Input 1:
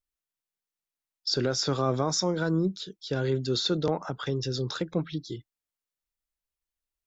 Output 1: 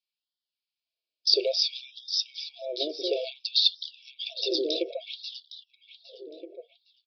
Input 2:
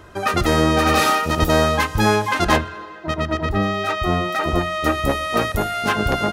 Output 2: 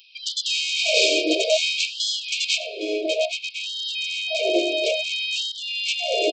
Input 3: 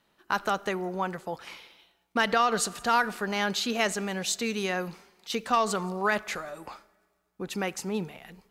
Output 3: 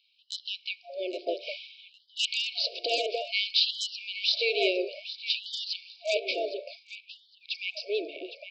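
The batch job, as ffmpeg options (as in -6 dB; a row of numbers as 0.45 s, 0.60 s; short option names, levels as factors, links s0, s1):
-filter_complex "[0:a]aresample=11025,aresample=44100,bandreject=f=117.7:t=h:w=4,bandreject=f=235.4:t=h:w=4,bandreject=f=353.1:t=h:w=4,bandreject=f=470.8:t=h:w=4,bandreject=f=588.5:t=h:w=4,bandreject=f=706.2:t=h:w=4,bandreject=f=823.9:t=h:w=4,bandreject=f=941.6:t=h:w=4,bandreject=f=1059.3:t=h:w=4,bandreject=f=1177:t=h:w=4,bandreject=f=1294.7:t=h:w=4,bandreject=f=1412.4:t=h:w=4,aresample=16000,asoftclip=type=hard:threshold=0.178,aresample=44100,crystalizer=i=1.5:c=0,asplit=2[s0][s1];[s1]adelay=810,lowpass=f=2200:p=1,volume=0.447,asplit=2[s2][s3];[s3]adelay=810,lowpass=f=2200:p=1,volume=0.45,asplit=2[s4][s5];[s5]adelay=810,lowpass=f=2200:p=1,volume=0.45,asplit=2[s6][s7];[s7]adelay=810,lowpass=f=2200:p=1,volume=0.45,asplit=2[s8][s9];[s9]adelay=810,lowpass=f=2200:p=1,volume=0.45[s10];[s2][s4][s6][s8][s10]amix=inputs=5:normalize=0[s11];[s0][s11]amix=inputs=2:normalize=0,afftfilt=real='re*(1-between(b*sr/4096,710,2200))':imag='im*(1-between(b*sr/4096,710,2200))':win_size=4096:overlap=0.75,afftfilt=real='re*gte(b*sr/1024,270*pow(3000/270,0.5+0.5*sin(2*PI*0.58*pts/sr)))':imag='im*gte(b*sr/1024,270*pow(3000/270,0.5+0.5*sin(2*PI*0.58*pts/sr)))':win_size=1024:overlap=0.75,volume=1.68"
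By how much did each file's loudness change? +1.5 LU, -3.0 LU, -1.0 LU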